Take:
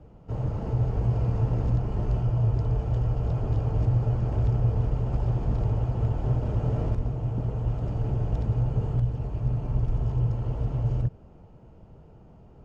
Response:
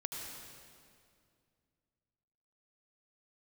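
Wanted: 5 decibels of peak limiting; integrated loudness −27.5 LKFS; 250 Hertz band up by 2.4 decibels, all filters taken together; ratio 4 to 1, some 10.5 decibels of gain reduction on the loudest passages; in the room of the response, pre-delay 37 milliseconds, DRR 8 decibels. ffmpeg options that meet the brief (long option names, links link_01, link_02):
-filter_complex "[0:a]equalizer=frequency=250:width_type=o:gain=4,acompressor=threshold=-32dB:ratio=4,alimiter=level_in=4dB:limit=-24dB:level=0:latency=1,volume=-4dB,asplit=2[link_01][link_02];[1:a]atrim=start_sample=2205,adelay=37[link_03];[link_02][link_03]afir=irnorm=-1:irlink=0,volume=-8.5dB[link_04];[link_01][link_04]amix=inputs=2:normalize=0,volume=9.5dB"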